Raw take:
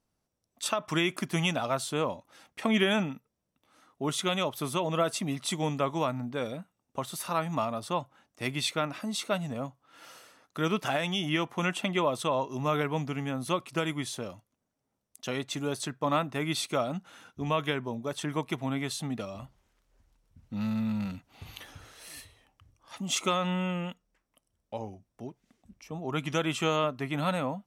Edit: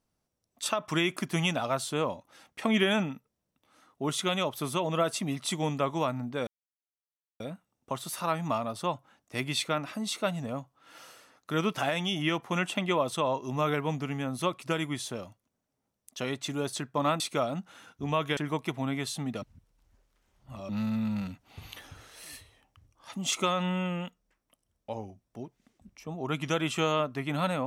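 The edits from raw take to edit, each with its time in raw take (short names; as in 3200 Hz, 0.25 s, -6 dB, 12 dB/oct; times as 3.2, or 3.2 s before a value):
6.47 insert silence 0.93 s
16.27–16.58 cut
17.75–18.21 cut
19.26–20.53 reverse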